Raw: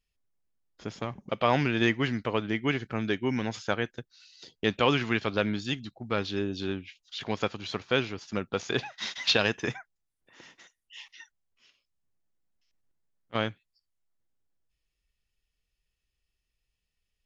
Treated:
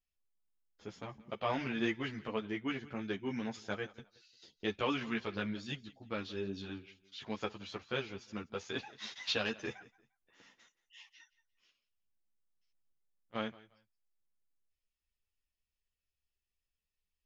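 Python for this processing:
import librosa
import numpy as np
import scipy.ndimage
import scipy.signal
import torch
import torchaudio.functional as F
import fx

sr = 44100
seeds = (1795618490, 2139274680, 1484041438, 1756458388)

p1 = x + fx.echo_feedback(x, sr, ms=175, feedback_pct=25, wet_db=-20, dry=0)
p2 = fx.ensemble(p1, sr)
y = F.gain(torch.from_numpy(p2), -7.0).numpy()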